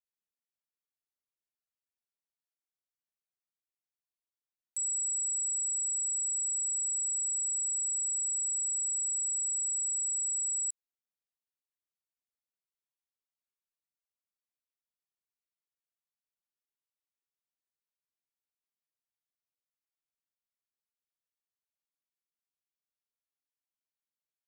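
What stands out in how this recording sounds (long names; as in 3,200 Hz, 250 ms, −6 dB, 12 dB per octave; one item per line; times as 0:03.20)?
background noise floor −96 dBFS
spectral slope +3.5 dB per octave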